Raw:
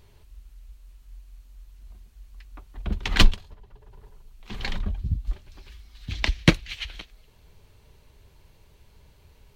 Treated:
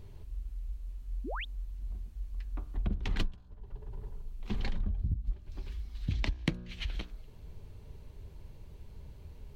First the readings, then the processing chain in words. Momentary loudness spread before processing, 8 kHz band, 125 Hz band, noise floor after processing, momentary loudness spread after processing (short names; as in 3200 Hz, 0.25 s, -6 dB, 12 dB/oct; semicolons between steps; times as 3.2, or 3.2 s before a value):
20 LU, -17.5 dB, -7.0 dB, -51 dBFS, 17 LU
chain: tilt shelf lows +6.5 dB, about 630 Hz; de-hum 60.07 Hz, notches 29; compressor 10:1, threshold -29 dBFS, peak gain reduction 27 dB; painted sound rise, 1.24–1.45, 210–3900 Hz -40 dBFS; gain +1 dB